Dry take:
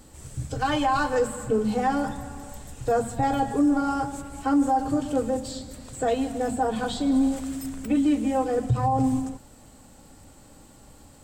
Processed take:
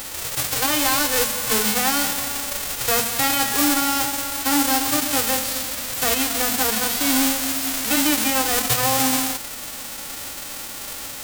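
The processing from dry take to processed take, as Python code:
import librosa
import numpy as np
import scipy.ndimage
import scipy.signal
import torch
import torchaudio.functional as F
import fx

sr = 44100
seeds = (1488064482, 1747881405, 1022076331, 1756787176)

y = fx.envelope_flatten(x, sr, power=0.1)
y = fx.env_flatten(y, sr, amount_pct=50)
y = F.gain(torch.from_numpy(y), 1.0).numpy()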